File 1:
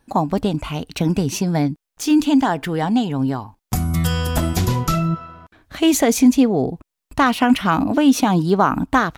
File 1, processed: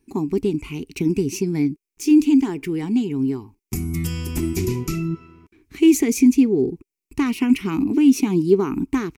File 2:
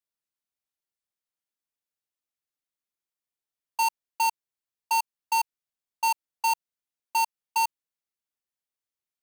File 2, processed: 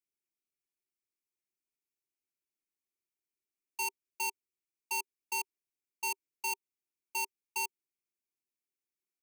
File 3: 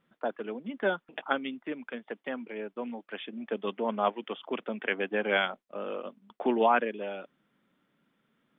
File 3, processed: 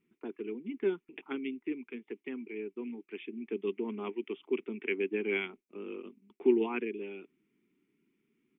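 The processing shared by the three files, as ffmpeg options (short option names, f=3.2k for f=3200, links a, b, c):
-af "firequalizer=gain_entry='entry(160,0);entry(390,12);entry(560,-21);entry(920,-8);entry(1600,-11);entry(2300,7);entry(3400,-8);entry(5400,2)':delay=0.05:min_phase=1,volume=-6dB"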